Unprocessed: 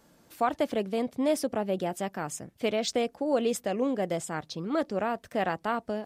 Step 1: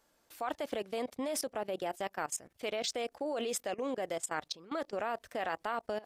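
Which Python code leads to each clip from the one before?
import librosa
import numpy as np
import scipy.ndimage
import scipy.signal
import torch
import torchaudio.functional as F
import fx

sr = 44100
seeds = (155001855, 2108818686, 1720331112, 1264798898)

y = fx.peak_eq(x, sr, hz=160.0, db=-14.5, octaves=2.0)
y = fx.level_steps(y, sr, step_db=19)
y = y * 10.0 ** (3.5 / 20.0)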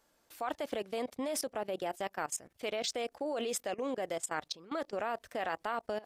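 y = x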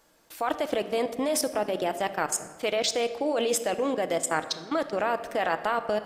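y = fx.room_shoebox(x, sr, seeds[0], volume_m3=1800.0, walls='mixed', distance_m=0.62)
y = y * 10.0 ** (8.5 / 20.0)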